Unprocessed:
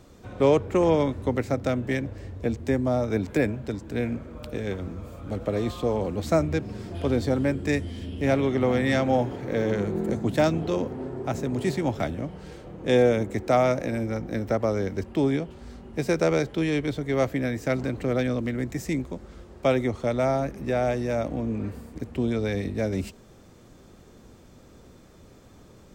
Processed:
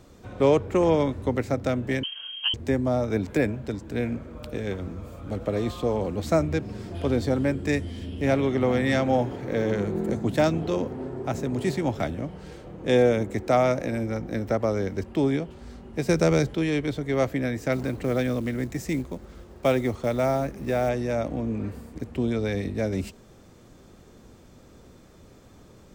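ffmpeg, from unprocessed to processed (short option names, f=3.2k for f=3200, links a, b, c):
-filter_complex "[0:a]asettb=1/sr,asplit=3[a][b][c];[a]atrim=end=2.034[d];[b]atrim=start=2.03:end=2.54,asetpts=PTS-STARTPTS,afade=t=in:d=0.004:c=qsin,afade=t=out:st=0.506:d=0.004:c=qsin,lowpass=f=2.8k:t=q:w=0.5098,lowpass=f=2.8k:t=q:w=0.6013,lowpass=f=2.8k:t=q:w=0.9,lowpass=f=2.8k:t=q:w=2.563,afreqshift=-3300[e];[c]atrim=start=2.536[f];[d][e]acrossfade=d=0.004:c1=hsin:c2=qsin[g];[g][f]acrossfade=d=0.004:c1=qsin:c2=hsin,asettb=1/sr,asplit=3[h][i][j];[h]atrim=end=16.094[k];[i]atrim=start=16.09:end=16.54,asetpts=PTS-STARTPTS,afade=t=in:d=0.004:c=qsin,afade=t=out:st=0.446:d=0.004:c=qsin,bass=f=250:g=7,treble=f=4k:g=5[l];[j]atrim=start=16.536[m];[k][l]acrossfade=d=0.004:c1=hsin:c2=qsin[n];[n][m]acrossfade=d=0.004:c1=qsin:c2=hsin,asettb=1/sr,asplit=3[o][p][q];[o]atrim=end=17.724[r];[p]atrim=start=17.72:end=20.89,asetpts=PTS-STARTPTS,afade=t=in:d=0.004:c=qsin,afade=t=out:st=3.166:d=0.004:c=qsin,acrusher=bits=7:mode=log:mix=0:aa=0.000001[s];[q]atrim=start=20.886[t];[r][s]acrossfade=d=0.004:c1=hsin:c2=qsin[u];[u][t]acrossfade=d=0.004:c1=qsin:c2=hsin"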